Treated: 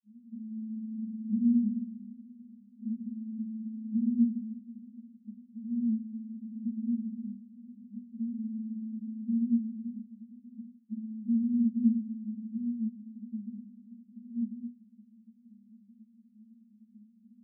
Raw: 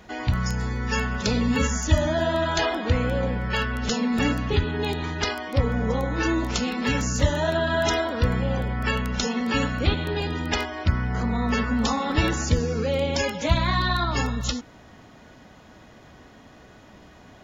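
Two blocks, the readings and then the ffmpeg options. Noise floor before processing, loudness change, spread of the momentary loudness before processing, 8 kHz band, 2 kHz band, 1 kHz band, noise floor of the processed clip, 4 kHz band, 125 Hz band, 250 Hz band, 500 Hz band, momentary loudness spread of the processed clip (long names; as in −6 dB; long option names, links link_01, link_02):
−49 dBFS, −8.5 dB, 4 LU, can't be measured, below −40 dB, below −40 dB, −62 dBFS, below −40 dB, below −20 dB, −3.5 dB, below −40 dB, 21 LU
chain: -af "asuperpass=centerf=220:order=20:qfactor=5.4,volume=2dB"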